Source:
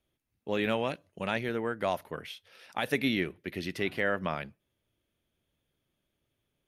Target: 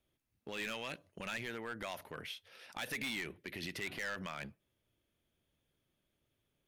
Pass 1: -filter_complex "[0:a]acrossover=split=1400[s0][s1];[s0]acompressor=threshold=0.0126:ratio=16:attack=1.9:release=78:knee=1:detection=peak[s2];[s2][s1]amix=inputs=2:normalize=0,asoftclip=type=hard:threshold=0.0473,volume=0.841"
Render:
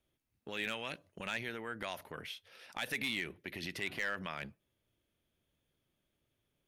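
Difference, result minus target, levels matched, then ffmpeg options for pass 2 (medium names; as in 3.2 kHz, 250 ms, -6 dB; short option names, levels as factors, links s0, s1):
hard clipper: distortion -8 dB
-filter_complex "[0:a]acrossover=split=1400[s0][s1];[s0]acompressor=threshold=0.0126:ratio=16:attack=1.9:release=78:knee=1:detection=peak[s2];[s2][s1]amix=inputs=2:normalize=0,asoftclip=type=hard:threshold=0.0224,volume=0.841"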